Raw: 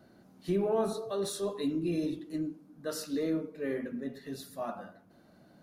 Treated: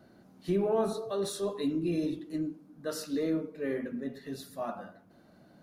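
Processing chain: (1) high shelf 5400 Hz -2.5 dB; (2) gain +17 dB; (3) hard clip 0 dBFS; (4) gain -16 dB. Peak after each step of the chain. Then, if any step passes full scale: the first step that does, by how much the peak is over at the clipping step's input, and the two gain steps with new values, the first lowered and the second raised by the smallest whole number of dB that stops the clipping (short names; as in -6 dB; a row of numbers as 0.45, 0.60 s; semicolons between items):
-20.5, -3.5, -3.5, -19.5 dBFS; no overload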